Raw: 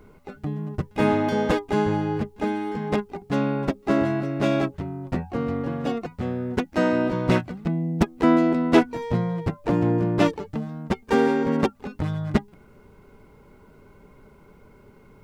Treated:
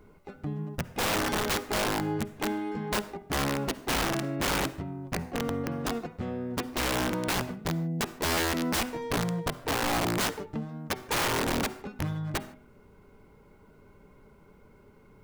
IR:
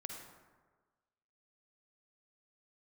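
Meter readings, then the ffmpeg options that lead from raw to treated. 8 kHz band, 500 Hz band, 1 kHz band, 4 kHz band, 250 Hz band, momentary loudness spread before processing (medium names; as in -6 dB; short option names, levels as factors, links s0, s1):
no reading, -8.5 dB, -3.5 dB, +6.0 dB, -9.5 dB, 10 LU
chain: -filter_complex "[0:a]bandreject=f=125.2:t=h:w=4,bandreject=f=250.4:t=h:w=4,bandreject=f=375.6:t=h:w=4,bandreject=f=500.8:t=h:w=4,bandreject=f=626:t=h:w=4,bandreject=f=751.2:t=h:w=4,bandreject=f=876.4:t=h:w=4,bandreject=f=1001.6:t=h:w=4,bandreject=f=1126.8:t=h:w=4,bandreject=f=1252:t=h:w=4,bandreject=f=1377.2:t=h:w=4,bandreject=f=1502.4:t=h:w=4,bandreject=f=1627.6:t=h:w=4,bandreject=f=1752.8:t=h:w=4,bandreject=f=1878:t=h:w=4,bandreject=f=2003.2:t=h:w=4,bandreject=f=2128.4:t=h:w=4,bandreject=f=2253.6:t=h:w=4,bandreject=f=2378.8:t=h:w=4,bandreject=f=2504:t=h:w=4,bandreject=f=2629.2:t=h:w=4,bandreject=f=2754.4:t=h:w=4,bandreject=f=2879.6:t=h:w=4,bandreject=f=3004.8:t=h:w=4,bandreject=f=3130:t=h:w=4,bandreject=f=3255.2:t=h:w=4,bandreject=f=3380.4:t=h:w=4,bandreject=f=3505.6:t=h:w=4,bandreject=f=3630.8:t=h:w=4,bandreject=f=3756:t=h:w=4,bandreject=f=3881.2:t=h:w=4,aeval=exprs='(mod(7.5*val(0)+1,2)-1)/7.5':c=same,asplit=2[s0][s1];[1:a]atrim=start_sample=2205,afade=t=out:st=0.21:d=0.01,atrim=end_sample=9702[s2];[s1][s2]afir=irnorm=-1:irlink=0,volume=0.501[s3];[s0][s3]amix=inputs=2:normalize=0,volume=0.447"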